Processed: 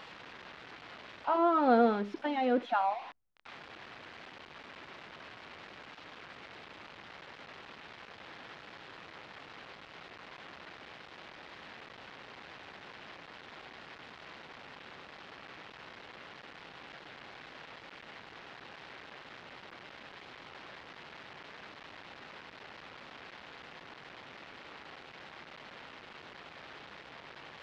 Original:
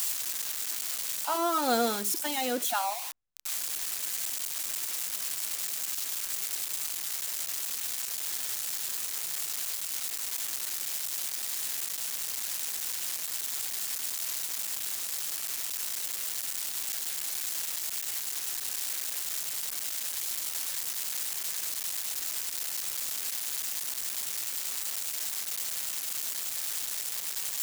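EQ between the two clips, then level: air absorption 330 m; tape spacing loss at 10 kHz 27 dB; +5.0 dB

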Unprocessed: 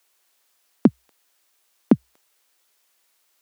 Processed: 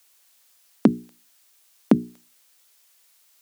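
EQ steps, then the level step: high shelf 2500 Hz +7.5 dB; notches 60/120/180/240/300/360/420 Hz; 0.0 dB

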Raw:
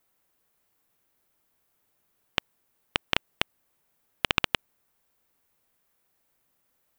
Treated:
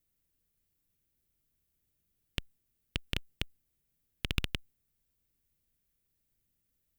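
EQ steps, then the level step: passive tone stack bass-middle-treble 10-0-1; +13.5 dB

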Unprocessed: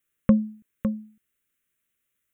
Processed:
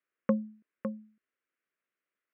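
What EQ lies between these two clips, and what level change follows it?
HPF 370 Hz 12 dB/oct; LPF 2000 Hz 12 dB/oct; air absorption 180 m; 0.0 dB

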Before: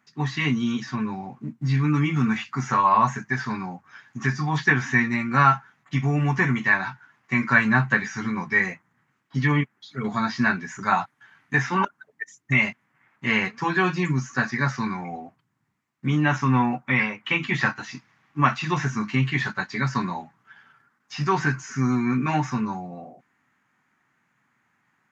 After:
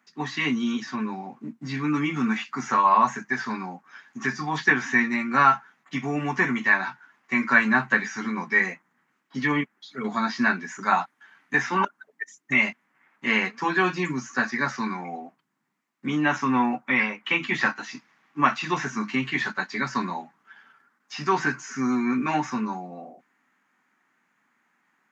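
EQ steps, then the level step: HPF 200 Hz 24 dB/oct; 0.0 dB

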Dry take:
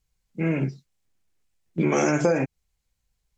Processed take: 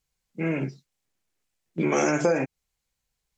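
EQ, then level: low shelf 140 Hz -10.5 dB; 0.0 dB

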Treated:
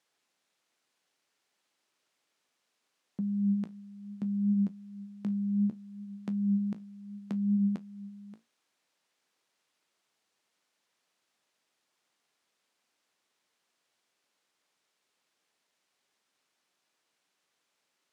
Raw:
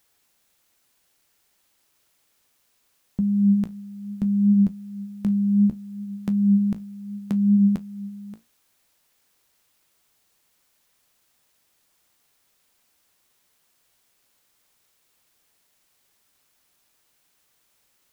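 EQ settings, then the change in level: HPF 210 Hz 12 dB/oct; air absorption 64 m; -6.5 dB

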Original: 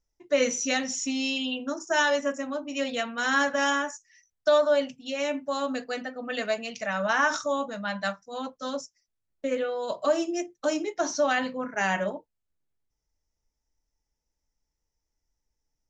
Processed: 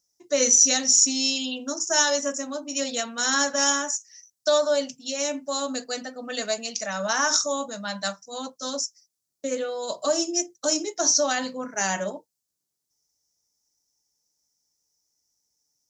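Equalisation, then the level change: HPF 130 Hz; resonant high shelf 3800 Hz +12.5 dB, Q 1.5; 0.0 dB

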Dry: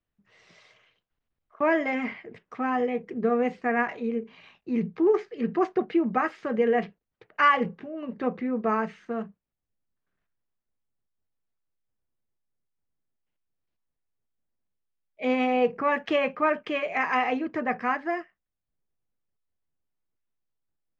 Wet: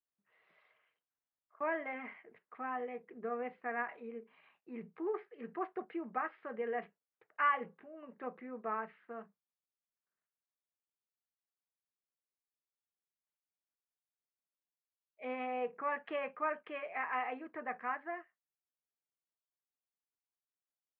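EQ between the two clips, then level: band-pass 1500 Hz, Q 0.62; air absorption 420 m; -7.5 dB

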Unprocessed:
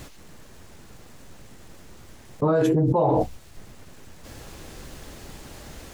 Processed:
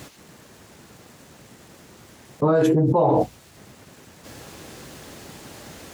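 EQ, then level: HPF 110 Hz 12 dB/oct; +2.5 dB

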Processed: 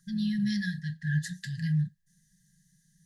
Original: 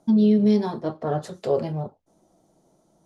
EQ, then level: brick-wall FIR band-stop 190–1600 Hz; band shelf 1600 Hz +14.5 dB 1.1 oct; fixed phaser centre 450 Hz, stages 8; +5.0 dB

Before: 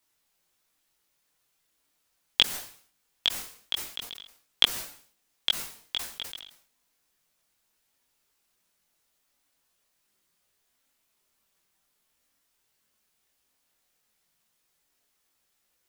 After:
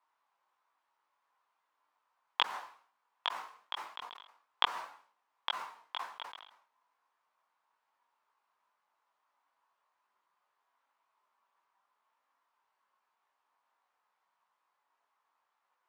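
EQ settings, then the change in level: resonant high-pass 1000 Hz, resonance Q 4.1; LPF 2600 Hz 6 dB/oct; tilt -4.5 dB/oct; 0.0 dB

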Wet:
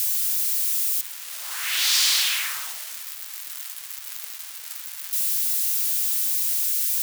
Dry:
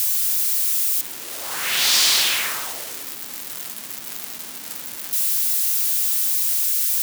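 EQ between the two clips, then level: HPF 1200 Hz 12 dB/oct; -3.0 dB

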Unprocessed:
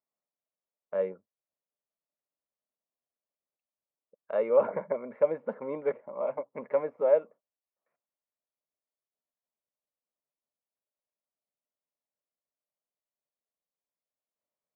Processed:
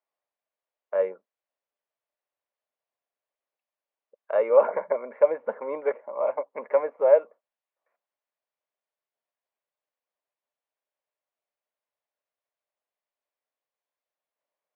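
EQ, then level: BPF 510–2500 Hz; notch 1300 Hz, Q 19; +7.5 dB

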